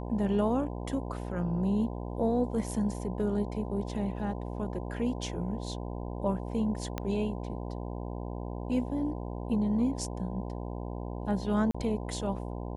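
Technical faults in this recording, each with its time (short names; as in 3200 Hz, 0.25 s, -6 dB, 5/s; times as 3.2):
buzz 60 Hz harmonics 17 -37 dBFS
6.98 pop -18 dBFS
11.71–11.74 gap 35 ms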